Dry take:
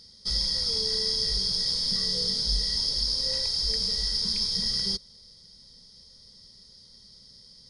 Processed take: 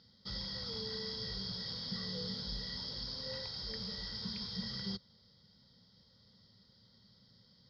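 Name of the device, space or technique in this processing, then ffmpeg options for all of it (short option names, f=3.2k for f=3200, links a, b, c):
guitar cabinet: -af "highpass=90,equalizer=f=110:t=q:w=4:g=7,equalizer=f=200:t=q:w=4:g=3,equalizer=f=410:t=q:w=4:g=-5,equalizer=f=1.4k:t=q:w=4:g=4,equalizer=f=2.4k:t=q:w=4:g=-6,lowpass=f=3.6k:w=0.5412,lowpass=f=3.6k:w=1.3066,volume=-4.5dB"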